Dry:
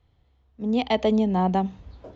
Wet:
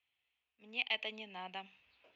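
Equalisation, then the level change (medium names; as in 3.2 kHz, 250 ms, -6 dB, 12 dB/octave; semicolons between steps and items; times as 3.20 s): band-pass filter 2.6 kHz, Q 6.6; +4.5 dB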